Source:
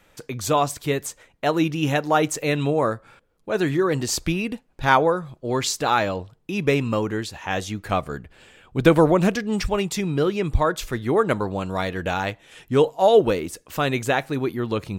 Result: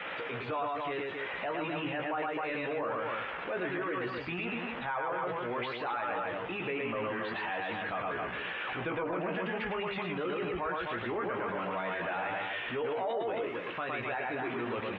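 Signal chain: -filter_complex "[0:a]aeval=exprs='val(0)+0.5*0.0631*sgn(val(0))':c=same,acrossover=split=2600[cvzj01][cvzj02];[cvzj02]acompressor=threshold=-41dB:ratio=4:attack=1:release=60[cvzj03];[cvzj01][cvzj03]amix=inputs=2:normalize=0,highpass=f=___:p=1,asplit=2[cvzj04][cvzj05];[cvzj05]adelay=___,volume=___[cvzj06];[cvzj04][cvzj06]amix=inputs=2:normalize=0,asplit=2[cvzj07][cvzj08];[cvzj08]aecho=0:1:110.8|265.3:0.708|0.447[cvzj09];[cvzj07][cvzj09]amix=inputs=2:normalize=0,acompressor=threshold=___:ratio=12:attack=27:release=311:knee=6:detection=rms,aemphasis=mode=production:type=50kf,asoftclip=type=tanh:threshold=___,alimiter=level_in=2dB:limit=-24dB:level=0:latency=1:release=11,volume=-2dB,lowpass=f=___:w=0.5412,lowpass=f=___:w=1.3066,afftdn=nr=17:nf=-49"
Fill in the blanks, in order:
840, 17, -6dB, -22dB, -15dB, 3300, 3300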